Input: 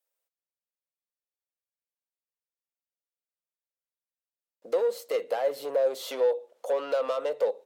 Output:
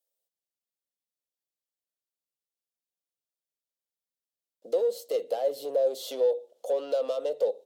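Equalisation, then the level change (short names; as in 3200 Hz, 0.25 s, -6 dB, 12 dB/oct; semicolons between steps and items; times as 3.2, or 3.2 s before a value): HPF 140 Hz; band shelf 1500 Hz -12 dB; 0.0 dB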